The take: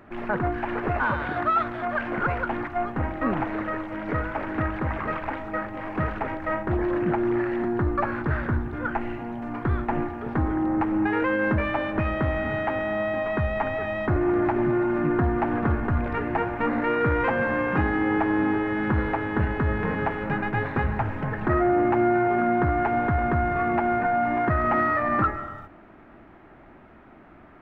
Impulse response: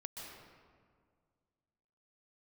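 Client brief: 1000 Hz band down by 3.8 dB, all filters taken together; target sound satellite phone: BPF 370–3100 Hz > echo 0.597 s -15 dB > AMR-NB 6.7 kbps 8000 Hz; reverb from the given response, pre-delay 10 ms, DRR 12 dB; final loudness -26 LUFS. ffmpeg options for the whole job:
-filter_complex "[0:a]equalizer=f=1k:t=o:g=-5.5,asplit=2[a][b];[1:a]atrim=start_sample=2205,adelay=10[c];[b][c]afir=irnorm=-1:irlink=0,volume=-9.5dB[d];[a][d]amix=inputs=2:normalize=0,highpass=370,lowpass=3.1k,aecho=1:1:597:0.178,volume=5dB" -ar 8000 -c:a libopencore_amrnb -b:a 6700

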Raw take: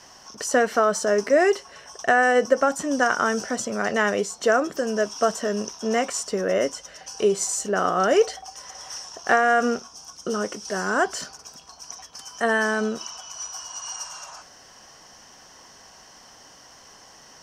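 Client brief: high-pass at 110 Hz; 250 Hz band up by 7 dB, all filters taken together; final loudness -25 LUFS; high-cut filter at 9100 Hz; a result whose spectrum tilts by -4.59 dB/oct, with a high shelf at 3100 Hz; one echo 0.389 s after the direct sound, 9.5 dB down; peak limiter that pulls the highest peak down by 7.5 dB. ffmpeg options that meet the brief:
-af "highpass=110,lowpass=9.1k,equalizer=f=250:t=o:g=8.5,highshelf=f=3.1k:g=-4.5,alimiter=limit=-10dB:level=0:latency=1,aecho=1:1:389:0.335,volume=-3dB"

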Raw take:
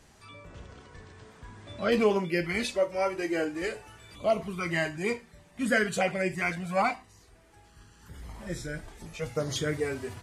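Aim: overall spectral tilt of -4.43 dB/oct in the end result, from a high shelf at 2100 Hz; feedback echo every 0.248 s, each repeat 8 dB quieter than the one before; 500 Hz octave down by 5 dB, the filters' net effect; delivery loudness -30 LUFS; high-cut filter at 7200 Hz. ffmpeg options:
-af "lowpass=7.2k,equalizer=f=500:t=o:g=-6,highshelf=f=2.1k:g=-5,aecho=1:1:248|496|744|992|1240:0.398|0.159|0.0637|0.0255|0.0102,volume=2.5dB"

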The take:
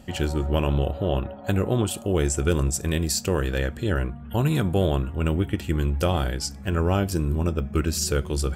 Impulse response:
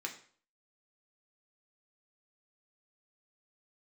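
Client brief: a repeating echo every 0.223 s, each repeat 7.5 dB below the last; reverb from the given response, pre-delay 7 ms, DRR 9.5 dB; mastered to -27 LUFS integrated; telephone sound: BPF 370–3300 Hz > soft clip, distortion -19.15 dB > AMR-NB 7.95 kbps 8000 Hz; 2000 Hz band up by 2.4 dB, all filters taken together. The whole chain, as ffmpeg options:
-filter_complex "[0:a]equalizer=f=2k:t=o:g=4,aecho=1:1:223|446|669|892|1115:0.422|0.177|0.0744|0.0312|0.0131,asplit=2[a][b];[1:a]atrim=start_sample=2205,adelay=7[c];[b][c]afir=irnorm=-1:irlink=0,volume=-10.5dB[d];[a][d]amix=inputs=2:normalize=0,highpass=370,lowpass=3.3k,asoftclip=threshold=-15dB,volume=4dB" -ar 8000 -c:a libopencore_amrnb -b:a 7950

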